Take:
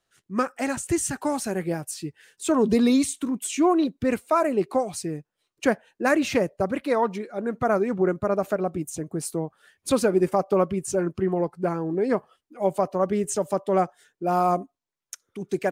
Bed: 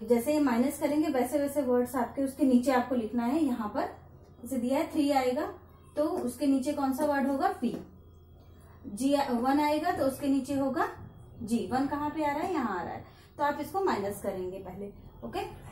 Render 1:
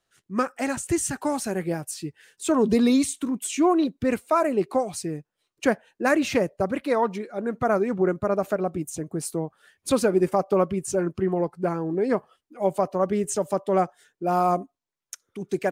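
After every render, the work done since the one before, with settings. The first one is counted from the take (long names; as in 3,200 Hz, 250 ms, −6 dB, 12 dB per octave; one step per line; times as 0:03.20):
no processing that can be heard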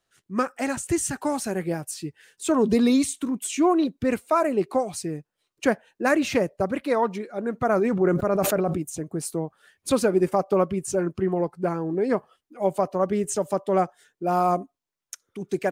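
0:07.68–0:08.78: level that may fall only so fast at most 30 dB per second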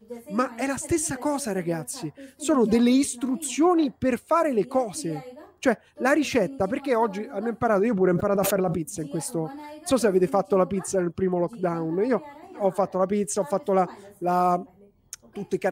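mix in bed −13.5 dB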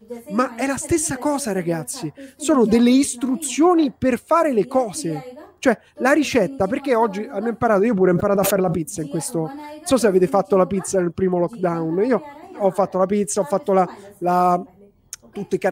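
level +5 dB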